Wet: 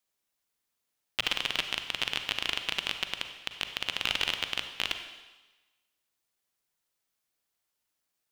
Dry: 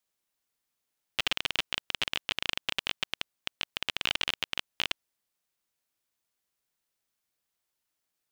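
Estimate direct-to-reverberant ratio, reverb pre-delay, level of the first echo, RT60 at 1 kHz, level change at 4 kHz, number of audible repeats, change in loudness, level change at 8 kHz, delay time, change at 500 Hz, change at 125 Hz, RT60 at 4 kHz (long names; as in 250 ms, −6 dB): 7.0 dB, 36 ms, no echo audible, 1.2 s, +1.0 dB, no echo audible, +1.0 dB, +1.0 dB, no echo audible, +0.5 dB, 0.0 dB, 1.2 s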